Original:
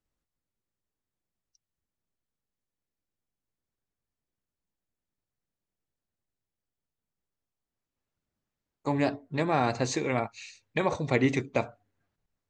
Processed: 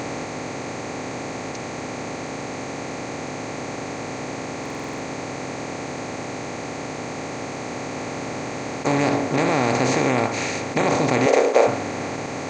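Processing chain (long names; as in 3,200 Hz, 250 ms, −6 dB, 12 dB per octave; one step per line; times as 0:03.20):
compressor on every frequency bin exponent 0.2
in parallel at −0.5 dB: brickwall limiter −12 dBFS, peak gain reduction 9 dB
0:11.26–0:11.67: on the sum: high-pass with resonance 500 Hz, resonance Q 3.5
buffer that repeats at 0:04.61, samples 2,048, times 7
level −4.5 dB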